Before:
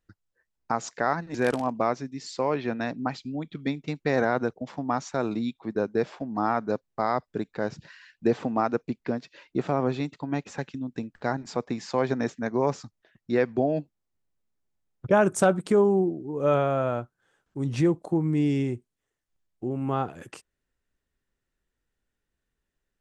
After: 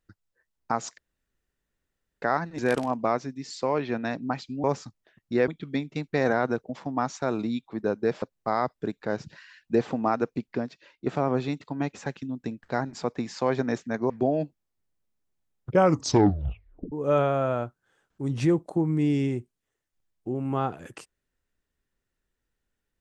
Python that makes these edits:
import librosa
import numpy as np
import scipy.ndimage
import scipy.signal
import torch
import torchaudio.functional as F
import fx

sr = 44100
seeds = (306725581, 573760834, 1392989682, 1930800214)

y = fx.edit(x, sr, fx.insert_room_tone(at_s=0.98, length_s=1.24),
    fx.cut(start_s=6.14, length_s=0.6),
    fx.fade_out_to(start_s=9.04, length_s=0.54, floor_db=-9.0),
    fx.move(start_s=12.62, length_s=0.84, to_s=3.4),
    fx.tape_stop(start_s=15.06, length_s=1.22), tone=tone)